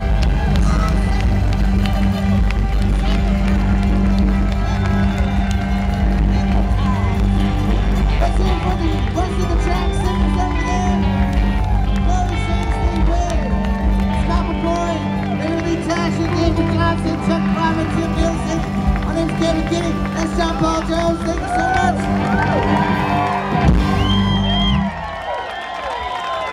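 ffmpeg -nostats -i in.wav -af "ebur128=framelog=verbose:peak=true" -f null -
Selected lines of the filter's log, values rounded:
Integrated loudness:
  I:         -18.1 LUFS
  Threshold: -28.0 LUFS
Loudness range:
  LRA:         1.8 LU
  Threshold: -38.0 LUFS
  LRA low:   -18.7 LUFS
  LRA high:  -16.9 LUFS
True peak:
  Peak:       -2.4 dBFS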